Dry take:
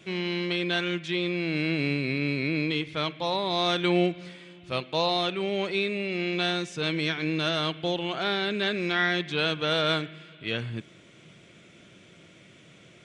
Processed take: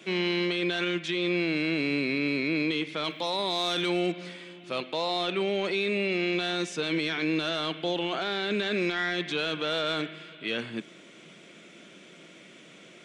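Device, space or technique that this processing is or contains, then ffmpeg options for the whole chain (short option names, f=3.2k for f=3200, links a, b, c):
soft clipper into limiter: -filter_complex "[0:a]asettb=1/sr,asplit=3[a][b][c];[a]atrim=end=3.044[d];[b]atrim=start=3.04:end=4.12,asetpts=PTS-STARTPTS,afade=t=in:d=0.004:c=qsin,afade=t=out:st=1.076:d=0.004:c=qsin,aemphasis=mode=production:type=50fm[e];[c]atrim=start=4.116[f];[d][e]acrossfade=d=0.004:c1=hsin:c2=qsin[g];[g][f]acrossfade=d=0.004:c1=qsin:c2=hsin,highpass=f=190:w=0.5412,highpass=f=190:w=1.3066,asoftclip=type=tanh:threshold=-13.5dB,alimiter=limit=-23dB:level=0:latency=1:release=12,volume=3.5dB"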